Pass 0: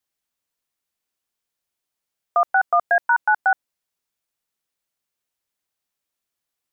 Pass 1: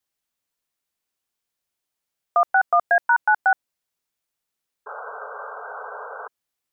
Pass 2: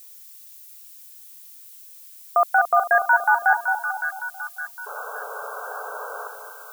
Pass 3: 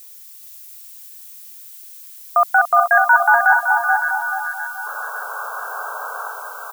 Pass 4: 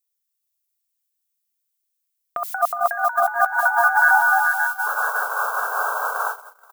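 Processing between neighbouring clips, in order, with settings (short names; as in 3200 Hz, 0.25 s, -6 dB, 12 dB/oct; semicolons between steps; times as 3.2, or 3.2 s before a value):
painted sound noise, 4.86–6.28, 410–1600 Hz -35 dBFS
split-band echo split 1200 Hz, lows 0.221 s, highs 0.562 s, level -6.5 dB; added noise violet -45 dBFS
Chebyshev high-pass 900 Hz, order 2; on a send: feedback echo 0.428 s, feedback 31%, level -4.5 dB; on the sum: gain +5 dB
gate -28 dBFS, range -43 dB; negative-ratio compressor -19 dBFS, ratio -0.5; gain +2 dB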